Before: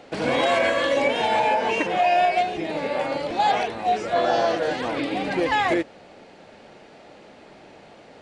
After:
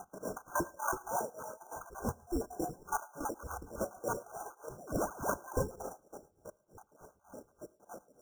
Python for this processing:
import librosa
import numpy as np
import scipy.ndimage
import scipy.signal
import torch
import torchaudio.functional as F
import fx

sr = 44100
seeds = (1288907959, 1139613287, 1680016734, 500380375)

p1 = fx.spec_dropout(x, sr, seeds[0], share_pct=83)
p2 = fx.low_shelf(p1, sr, hz=190.0, db=-9.5)
p3 = fx.over_compress(p2, sr, threshold_db=-33.0, ratio=-0.5)
p4 = fx.spec_paint(p3, sr, seeds[1], shape='rise', start_s=4.8, length_s=0.54, low_hz=1800.0, high_hz=7100.0, level_db=-34.0)
p5 = fx.sample_hold(p4, sr, seeds[2], rate_hz=2600.0, jitter_pct=0)
p6 = fx.brickwall_bandstop(p5, sr, low_hz=1600.0, high_hz=5300.0)
p7 = p6 + fx.echo_thinned(p6, sr, ms=111, feedback_pct=36, hz=720.0, wet_db=-9.5, dry=0)
p8 = fx.rev_gated(p7, sr, seeds[3], gate_ms=160, shape='rising', drr_db=8.5)
p9 = p8 * 10.0 ** (-19 * (0.5 - 0.5 * np.cos(2.0 * np.pi * 3.4 * np.arange(len(p8)) / sr)) / 20.0)
y = p9 * librosa.db_to_amplitude(1.0)